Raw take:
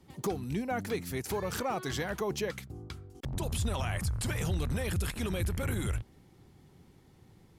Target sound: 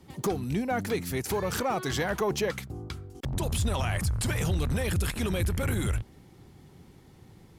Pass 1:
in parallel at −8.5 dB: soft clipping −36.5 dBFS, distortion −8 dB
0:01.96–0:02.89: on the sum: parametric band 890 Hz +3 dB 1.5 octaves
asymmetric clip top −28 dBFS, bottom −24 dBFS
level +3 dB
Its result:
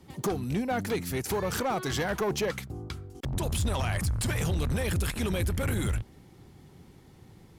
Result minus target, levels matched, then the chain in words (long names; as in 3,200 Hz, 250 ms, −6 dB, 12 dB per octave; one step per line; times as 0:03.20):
asymmetric clip: distortion +4 dB
in parallel at −8.5 dB: soft clipping −36.5 dBFS, distortion −8 dB
0:01.96–0:02.89: on the sum: parametric band 890 Hz +3 dB 1.5 octaves
asymmetric clip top −18 dBFS, bottom −24 dBFS
level +3 dB